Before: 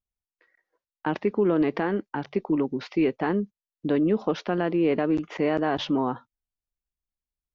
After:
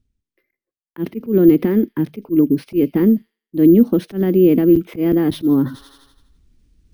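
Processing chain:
noise gate with hold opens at −48 dBFS
low shelf with overshoot 400 Hz +13.5 dB, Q 1.5
delay with a high-pass on its return 91 ms, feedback 46%, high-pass 5,100 Hz, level −9 dB
wrong playback speed 44.1 kHz file played as 48 kHz
parametric band 1,000 Hz −5 dB 1.1 octaves
reversed playback
upward compression, threshold −19 dBFS
reversed playback
volume swells 108 ms
on a send at −23 dB: convolution reverb, pre-delay 3 ms
on the sum: bad sample-rate conversion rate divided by 3×, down filtered, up hold

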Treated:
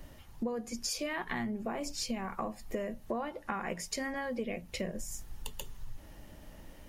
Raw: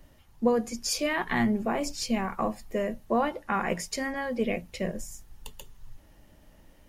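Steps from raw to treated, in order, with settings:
downward compressor 6 to 1, threshold −39 dBFS, peak gain reduction 19 dB
level +5 dB

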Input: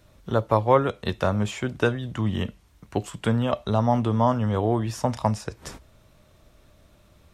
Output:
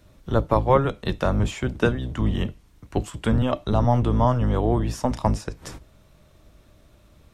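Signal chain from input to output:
sub-octave generator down 1 octave, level 0 dB
parametric band 310 Hz +3 dB 0.24 octaves

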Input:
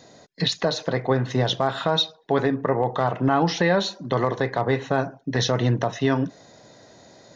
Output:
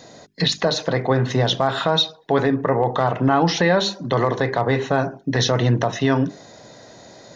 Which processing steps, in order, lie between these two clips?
mains-hum notches 50/100/150/200/250/300/350/400 Hz
in parallel at 0 dB: brickwall limiter −19 dBFS, peak gain reduction 9.5 dB

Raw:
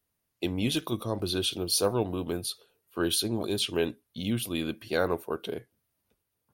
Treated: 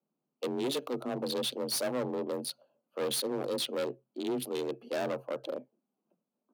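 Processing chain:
adaptive Wiener filter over 25 samples
gain into a clipping stage and back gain 29 dB
frequency shifter +130 Hz

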